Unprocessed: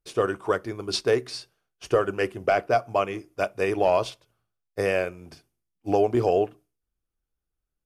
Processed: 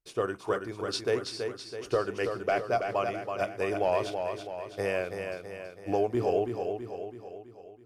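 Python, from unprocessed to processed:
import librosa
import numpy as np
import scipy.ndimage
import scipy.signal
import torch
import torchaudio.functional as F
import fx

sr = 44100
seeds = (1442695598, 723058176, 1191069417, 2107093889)

y = fx.echo_feedback(x, sr, ms=328, feedback_pct=53, wet_db=-6)
y = y * librosa.db_to_amplitude(-6.0)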